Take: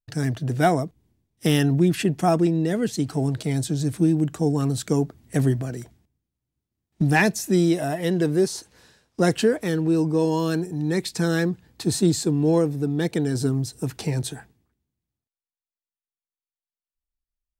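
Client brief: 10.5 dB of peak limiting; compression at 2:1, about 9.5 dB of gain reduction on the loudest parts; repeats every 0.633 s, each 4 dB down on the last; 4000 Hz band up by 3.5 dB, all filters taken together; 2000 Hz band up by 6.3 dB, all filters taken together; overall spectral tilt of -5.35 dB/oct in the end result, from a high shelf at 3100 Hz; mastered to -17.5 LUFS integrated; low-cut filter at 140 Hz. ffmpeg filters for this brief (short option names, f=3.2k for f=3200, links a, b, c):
-af "highpass=140,equalizer=f=2k:t=o:g=8.5,highshelf=f=3.1k:g=-7,equalizer=f=4k:t=o:g=7,acompressor=threshold=-27dB:ratio=2,alimiter=limit=-22dB:level=0:latency=1,aecho=1:1:633|1266|1899|2532|3165|3798|4431|5064|5697:0.631|0.398|0.25|0.158|0.0994|0.0626|0.0394|0.0249|0.0157,volume=12.5dB"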